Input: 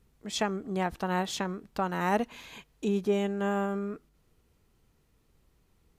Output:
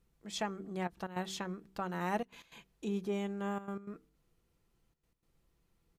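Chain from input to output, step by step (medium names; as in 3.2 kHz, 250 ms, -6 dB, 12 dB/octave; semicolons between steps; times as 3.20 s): comb 5.9 ms, depth 30%; de-hum 63.86 Hz, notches 7; trance gate "xxxxxxxxx.x.xx" 155 bpm -12 dB; trim -7.5 dB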